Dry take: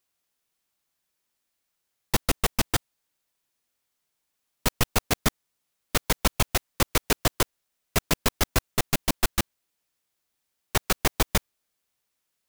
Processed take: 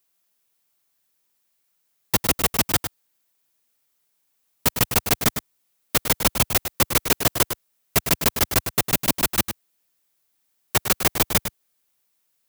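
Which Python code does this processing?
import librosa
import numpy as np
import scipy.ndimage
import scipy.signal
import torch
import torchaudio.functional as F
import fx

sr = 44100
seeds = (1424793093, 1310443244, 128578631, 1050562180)

p1 = scipy.signal.sosfilt(scipy.signal.butter(2, 74.0, 'highpass', fs=sr, output='sos'), x)
p2 = fx.high_shelf(p1, sr, hz=11000.0, db=9.0)
p3 = p2 + fx.echo_single(p2, sr, ms=104, db=-9.0, dry=0)
y = F.gain(torch.from_numpy(p3), 2.5).numpy()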